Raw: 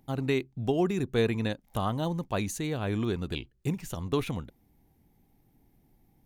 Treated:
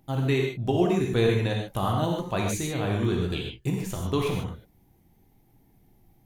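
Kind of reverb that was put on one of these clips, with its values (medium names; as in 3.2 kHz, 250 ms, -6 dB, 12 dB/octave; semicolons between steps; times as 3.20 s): gated-style reverb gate 170 ms flat, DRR -0.5 dB; trim +1 dB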